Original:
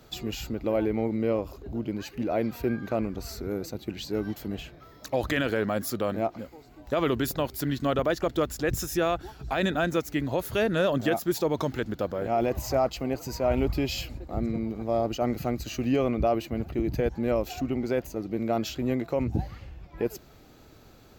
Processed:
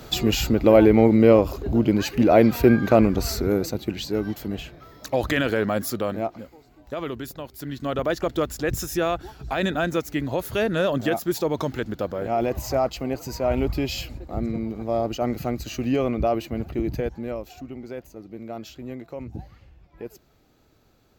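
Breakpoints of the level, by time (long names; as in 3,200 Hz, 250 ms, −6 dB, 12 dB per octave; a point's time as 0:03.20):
0:03.25 +12 dB
0:04.21 +4 dB
0:05.79 +4 dB
0:07.44 −8 dB
0:08.11 +2 dB
0:16.87 +2 dB
0:17.51 −8 dB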